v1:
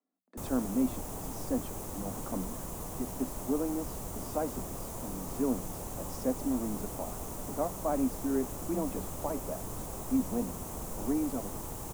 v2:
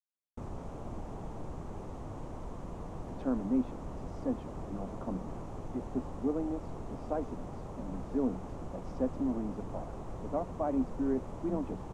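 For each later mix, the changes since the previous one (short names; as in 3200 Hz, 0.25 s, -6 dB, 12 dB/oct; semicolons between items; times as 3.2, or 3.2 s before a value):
speech: entry +2.75 s; master: add tape spacing loss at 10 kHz 29 dB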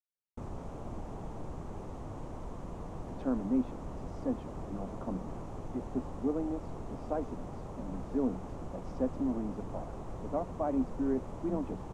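none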